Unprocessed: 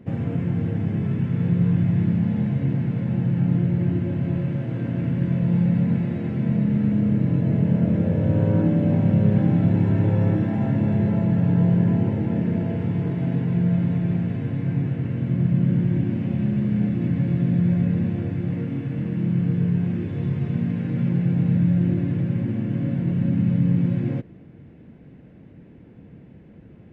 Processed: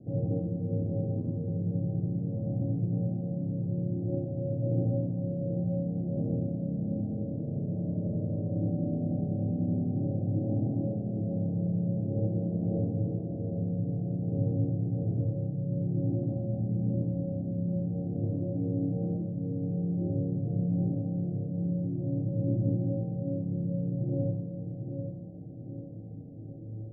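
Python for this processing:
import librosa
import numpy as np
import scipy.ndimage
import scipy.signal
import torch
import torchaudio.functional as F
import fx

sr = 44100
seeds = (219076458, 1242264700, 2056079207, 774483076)

p1 = scipy.signal.sosfilt(scipy.signal.butter(16, 760.0, 'lowpass', fs=sr, output='sos'), x)
p2 = p1 + 0.36 * np.pad(p1, (int(6.7 * sr / 1000.0), 0))[:len(p1)]
p3 = fx.over_compress(p2, sr, threshold_db=-26.0, ratio=-0.5)
p4 = p2 + (p3 * librosa.db_to_amplitude(2.0))
p5 = fx.comb_fb(p4, sr, f0_hz=110.0, decay_s=0.8, harmonics='odd', damping=0.0, mix_pct=90)
p6 = p5 + fx.echo_feedback(p5, sr, ms=791, feedback_pct=44, wet_db=-7, dry=0)
y = fx.rev_schroeder(p6, sr, rt60_s=0.79, comb_ms=25, drr_db=-2.5)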